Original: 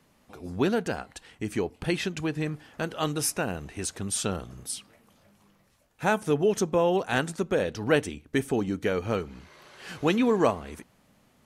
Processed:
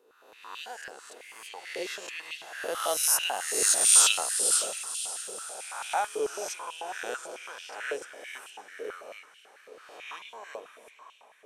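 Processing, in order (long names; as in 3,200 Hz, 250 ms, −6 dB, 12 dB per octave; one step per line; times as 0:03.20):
peak hold with a rise ahead of every peak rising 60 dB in 1.11 s
source passing by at 0:04.02, 14 m/s, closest 5.8 metres
high-shelf EQ 3,900 Hz +10.5 dB
on a send: feedback delay with all-pass diffusion 549 ms, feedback 49%, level −11 dB
on the sum: high-pass on a step sequencer 9.1 Hz 470–2,900 Hz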